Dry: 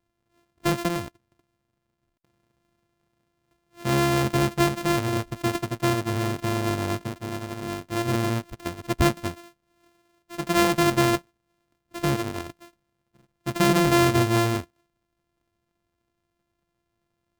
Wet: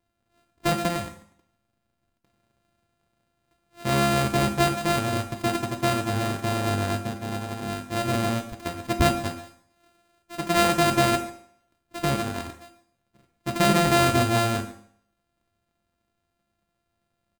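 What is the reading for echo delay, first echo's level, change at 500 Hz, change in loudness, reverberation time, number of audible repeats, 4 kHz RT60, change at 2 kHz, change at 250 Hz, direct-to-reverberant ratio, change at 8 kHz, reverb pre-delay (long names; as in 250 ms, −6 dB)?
141 ms, −18.0 dB, 0.0 dB, 0.0 dB, 0.60 s, 1, 0.60 s, +1.0 dB, −2.0 dB, 4.0 dB, +1.0 dB, 4 ms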